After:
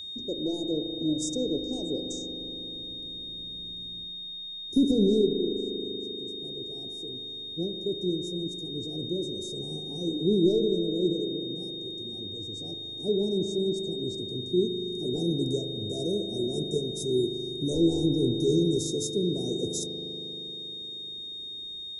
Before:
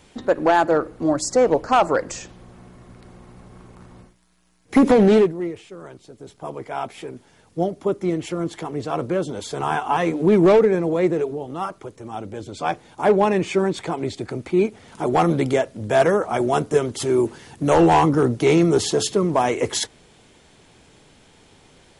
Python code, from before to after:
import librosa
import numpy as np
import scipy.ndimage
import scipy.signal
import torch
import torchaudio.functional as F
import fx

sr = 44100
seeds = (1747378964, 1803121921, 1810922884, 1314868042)

y = scipy.signal.sosfilt(scipy.signal.ellip(3, 1.0, 70, [390.0, 6000.0], 'bandstop', fs=sr, output='sos'), x)
y = y + 10.0 ** (-30.0 / 20.0) * np.sin(2.0 * np.pi * 3700.0 * np.arange(len(y)) / sr)
y = fx.rev_spring(y, sr, rt60_s=4.0, pass_ms=(39,), chirp_ms=75, drr_db=5.0)
y = y * 10.0 ** (-7.0 / 20.0)